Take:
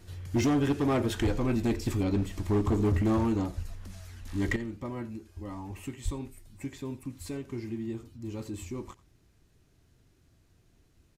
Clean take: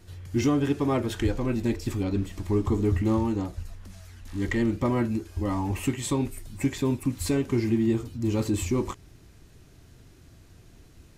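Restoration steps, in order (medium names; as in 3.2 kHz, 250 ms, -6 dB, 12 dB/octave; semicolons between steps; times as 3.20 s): clip repair -21.5 dBFS; 6.04–6.16 s: high-pass 140 Hz 24 dB/octave; inverse comb 88 ms -20.5 dB; 4.56 s: gain correction +12 dB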